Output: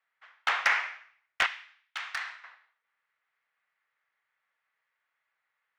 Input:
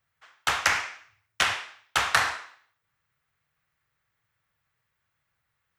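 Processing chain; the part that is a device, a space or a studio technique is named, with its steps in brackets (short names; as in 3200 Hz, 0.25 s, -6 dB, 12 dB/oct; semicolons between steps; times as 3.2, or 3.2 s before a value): megaphone (BPF 620–3200 Hz; bell 2000 Hz +4 dB 0.44 oct; hard clip -13 dBFS, distortion -15 dB); 1.46–2.44 passive tone stack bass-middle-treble 5-5-5; gain -1.5 dB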